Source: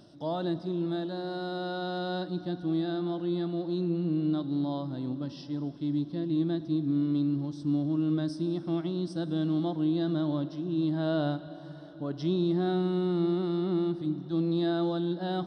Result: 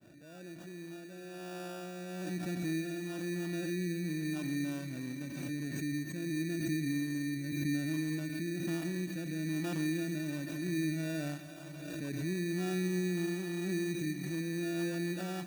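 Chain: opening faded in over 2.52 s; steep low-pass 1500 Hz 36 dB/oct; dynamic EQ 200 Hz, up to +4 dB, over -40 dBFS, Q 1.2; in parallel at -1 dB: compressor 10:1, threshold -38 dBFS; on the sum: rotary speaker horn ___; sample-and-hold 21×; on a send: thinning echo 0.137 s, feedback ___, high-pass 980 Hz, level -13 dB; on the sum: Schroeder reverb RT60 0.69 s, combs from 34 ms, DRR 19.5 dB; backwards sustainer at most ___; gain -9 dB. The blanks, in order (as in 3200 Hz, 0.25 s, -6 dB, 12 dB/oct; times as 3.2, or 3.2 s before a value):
1.1 Hz, 78%, 29 dB/s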